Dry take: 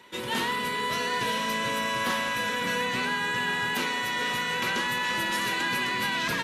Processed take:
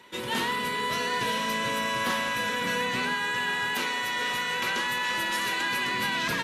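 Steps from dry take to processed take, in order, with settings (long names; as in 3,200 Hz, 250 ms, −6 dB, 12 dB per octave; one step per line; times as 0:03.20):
0:03.14–0:05.86: parametric band 150 Hz −5.5 dB 2.4 octaves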